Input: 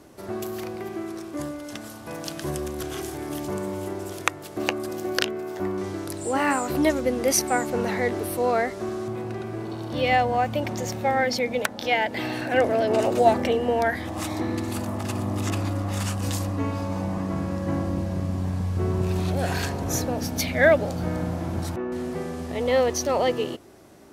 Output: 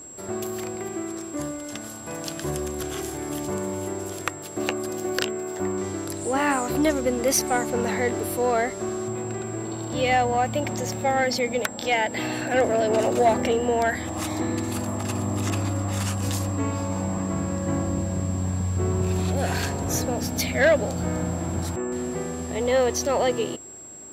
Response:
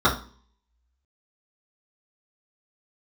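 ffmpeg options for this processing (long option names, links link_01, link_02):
-af "acontrast=52,aeval=exprs='val(0)+0.0178*sin(2*PI*7600*n/s)':channel_layout=same,asoftclip=type=tanh:threshold=-4.5dB,volume=-5dB"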